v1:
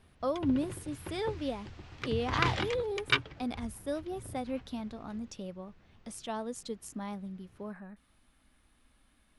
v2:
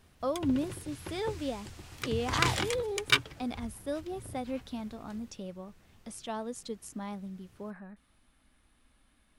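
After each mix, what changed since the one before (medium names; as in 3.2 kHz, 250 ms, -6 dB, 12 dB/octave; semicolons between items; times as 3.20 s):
background: remove distance through air 170 m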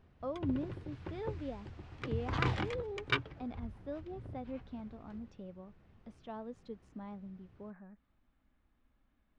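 speech -5.5 dB; master: add tape spacing loss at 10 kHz 34 dB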